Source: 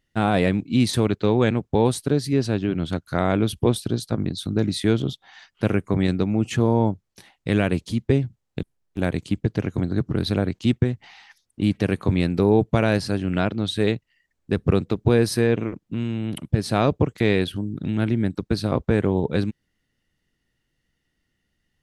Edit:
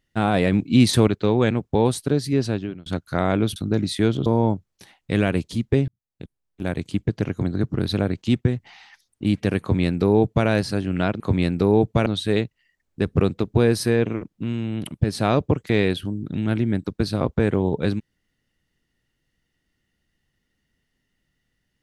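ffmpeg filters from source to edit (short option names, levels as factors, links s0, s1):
-filter_complex "[0:a]asplit=9[s0][s1][s2][s3][s4][s5][s6][s7][s8];[s0]atrim=end=0.522[s9];[s1]atrim=start=0.518:end=1.082,asetpts=PTS-STARTPTS,volume=1.58[s10];[s2]atrim=start=1.078:end=2.86,asetpts=PTS-STARTPTS,afade=t=out:st=1.402:d=0.38[s11];[s3]atrim=start=2.86:end=3.562,asetpts=PTS-STARTPTS,afade=t=in:d=0.004:c=hsin[s12];[s4]atrim=start=4.408:end=5.112[s13];[s5]atrim=start=6.628:end=8.25,asetpts=PTS-STARTPTS,afade=t=out:st=1.618:d=0.004:c=hsin[s14];[s6]atrim=start=8.25:end=13.572,asetpts=PTS-STARTPTS,afade=t=in:d=1.11[s15];[s7]atrim=start=11.978:end=12.842[s16];[s8]atrim=start=13.568[s17];[s9][s10]acrossfade=d=0.004:c1=hsin:c2=hsin[s18];[s11][s12]concat=n=2:v=0:a=1[s19];[s18][s19]acrossfade=d=0.004:c1=hsin:c2=hsin[s20];[s20][s13]acrossfade=d=0.004:c1=hsin:c2=hsin[s21];[s14][s15]concat=n=2:v=0:a=1[s22];[s21][s22]acrossfade=d=0.004:c1=hsin:c2=hsin[s23];[s23][s16]acrossfade=d=0.004:c1=hsin:c2=hsin[s24];[s24][s17]acrossfade=d=0.004:c1=hsin:c2=hsin"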